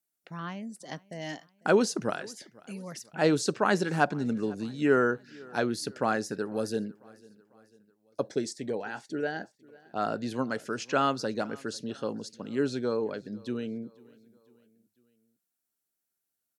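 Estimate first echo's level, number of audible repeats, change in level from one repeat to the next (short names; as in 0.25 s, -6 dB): -24.0 dB, 2, -6.0 dB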